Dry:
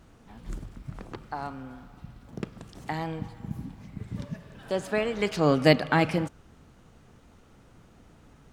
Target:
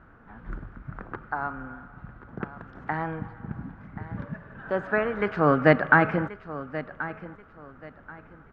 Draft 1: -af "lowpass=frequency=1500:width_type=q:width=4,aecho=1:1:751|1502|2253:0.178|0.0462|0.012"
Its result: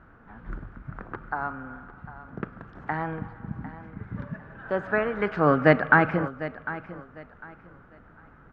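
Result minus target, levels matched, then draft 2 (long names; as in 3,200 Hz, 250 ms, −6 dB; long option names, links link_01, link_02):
echo 331 ms early
-af "lowpass=frequency=1500:width_type=q:width=4,aecho=1:1:1082|2164|3246:0.178|0.0462|0.012"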